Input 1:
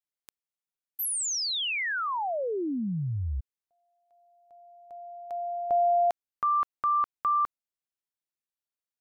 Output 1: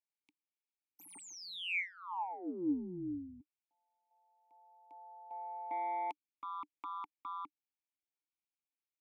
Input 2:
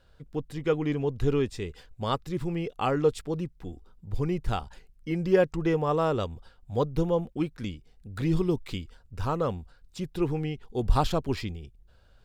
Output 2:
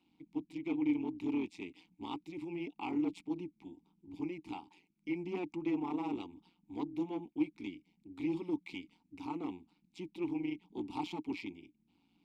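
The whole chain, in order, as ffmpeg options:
-filter_complex "[0:a]acrossover=split=110[a][b];[a]acompressor=threshold=-43dB:ratio=6:release=991:detection=peak[c];[c][b]amix=inputs=2:normalize=0,aexciter=amount=1.7:drive=9.4:freq=2.3k,asplit=2[d][e];[e]volume=25dB,asoftclip=hard,volume=-25dB,volume=-10.5dB[f];[d][f]amix=inputs=2:normalize=0,tremolo=f=180:d=0.974,asoftclip=type=tanh:threshold=-20dB,asplit=3[g][h][i];[g]bandpass=f=300:t=q:w=8,volume=0dB[j];[h]bandpass=f=870:t=q:w=8,volume=-6dB[k];[i]bandpass=f=2.24k:t=q:w=8,volume=-9dB[l];[j][k][l]amix=inputs=3:normalize=0,volume=4.5dB"

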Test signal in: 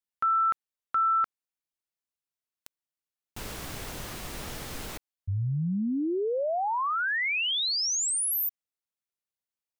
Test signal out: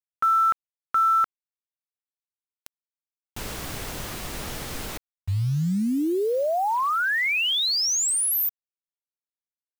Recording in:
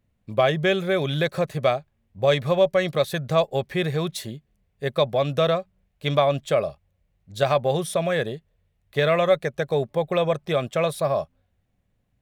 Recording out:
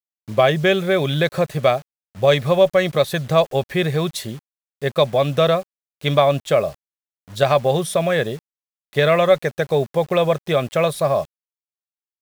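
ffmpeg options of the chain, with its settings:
-af "acrusher=bits=7:mix=0:aa=0.000001,volume=4.5dB"

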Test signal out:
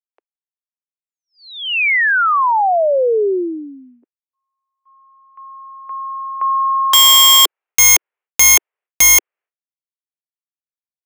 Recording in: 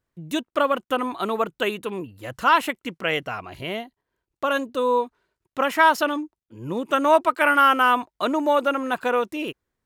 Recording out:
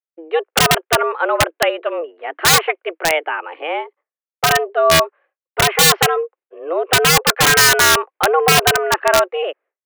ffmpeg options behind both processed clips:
-af "highpass=f=210:t=q:w=0.5412,highpass=f=210:t=q:w=1.307,lowpass=f=2.5k:t=q:w=0.5176,lowpass=f=2.5k:t=q:w=0.7071,lowpass=f=2.5k:t=q:w=1.932,afreqshift=160,agate=range=-33dB:threshold=-51dB:ratio=3:detection=peak,aeval=exprs='(mod(4.73*val(0)+1,2)-1)/4.73':c=same,volume=8.5dB"

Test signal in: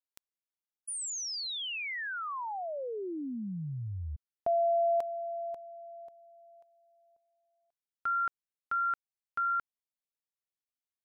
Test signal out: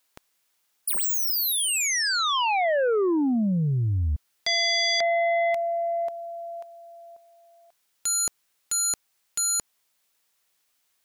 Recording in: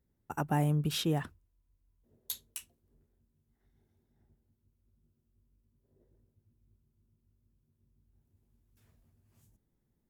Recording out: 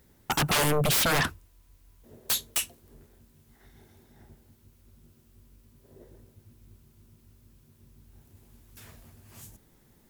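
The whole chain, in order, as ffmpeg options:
-af "lowshelf=f=460:g=-9.5,aeval=exprs='0.0944*sin(PI/2*10*val(0)/0.0944)':c=same"

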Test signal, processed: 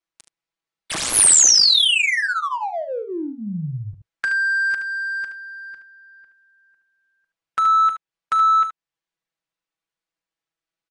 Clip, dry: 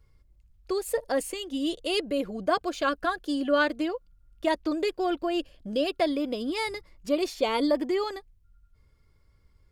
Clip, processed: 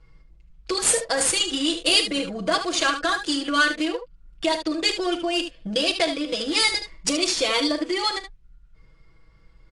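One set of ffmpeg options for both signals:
-filter_complex "[0:a]aecho=1:1:6.1:0.97,acompressor=threshold=-36dB:ratio=2,crystalizer=i=8:c=0,adynamicsmooth=sensitivity=7.5:basefreq=1.9k,asplit=2[a][b];[b]aecho=0:1:39|74:0.168|0.335[c];[a][c]amix=inputs=2:normalize=0,volume=5.5dB" -ar 22050 -c:a aac -b:a 48k

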